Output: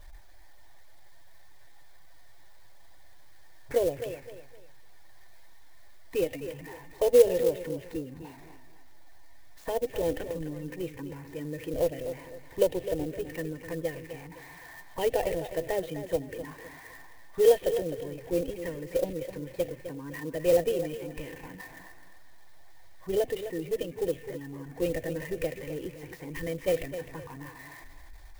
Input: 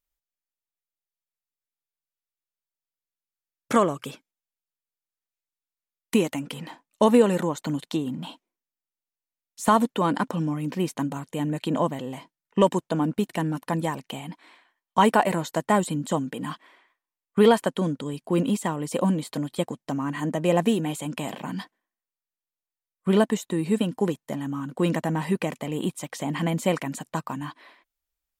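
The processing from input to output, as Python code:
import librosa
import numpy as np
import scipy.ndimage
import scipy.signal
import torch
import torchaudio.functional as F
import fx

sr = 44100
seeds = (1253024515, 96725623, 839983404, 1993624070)

p1 = x + 0.5 * 10.0 ** (-29.5 / 20.0) * np.sign(x)
p2 = fx.spec_gate(p1, sr, threshold_db=-30, keep='strong')
p3 = scipy.signal.sosfilt(scipy.signal.cheby1(2, 1.0, 2800.0, 'lowpass', fs=sr, output='sos'), p2)
p4 = fx.schmitt(p3, sr, flips_db=-19.0)
p5 = p3 + (p4 * 10.0 ** (-6.5 / 20.0))
p6 = fx.fixed_phaser(p5, sr, hz=520.0, stages=4)
p7 = fx.env_phaser(p6, sr, low_hz=420.0, high_hz=1200.0, full_db=-22.5)
p8 = fx.small_body(p7, sr, hz=(500.0, 1200.0, 1800.0), ring_ms=45, db=10)
p9 = p8 + fx.echo_feedback(p8, sr, ms=257, feedback_pct=31, wet_db=-11.0, dry=0)
p10 = fx.clock_jitter(p9, sr, seeds[0], jitter_ms=0.034)
y = p10 * 10.0 ** (-4.0 / 20.0)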